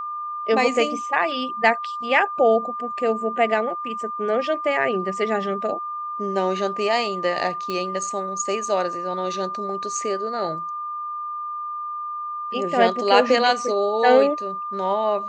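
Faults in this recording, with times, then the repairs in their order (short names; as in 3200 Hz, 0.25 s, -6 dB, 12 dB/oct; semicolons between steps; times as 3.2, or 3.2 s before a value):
tone 1200 Hz -27 dBFS
7.7 pop -15 dBFS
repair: de-click; notch 1200 Hz, Q 30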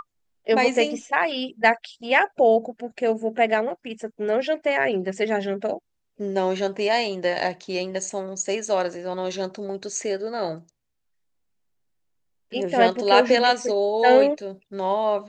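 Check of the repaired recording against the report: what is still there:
none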